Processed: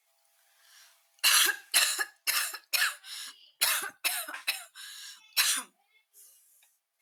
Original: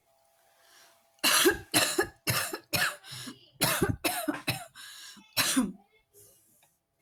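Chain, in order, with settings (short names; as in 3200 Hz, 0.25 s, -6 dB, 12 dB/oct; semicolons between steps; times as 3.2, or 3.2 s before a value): HPF 1400 Hz 12 dB/oct; gain +2 dB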